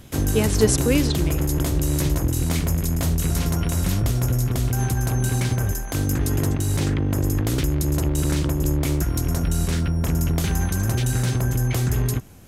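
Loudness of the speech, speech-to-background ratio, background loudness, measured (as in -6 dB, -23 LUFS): -23.0 LUFS, -0.5 dB, -22.5 LUFS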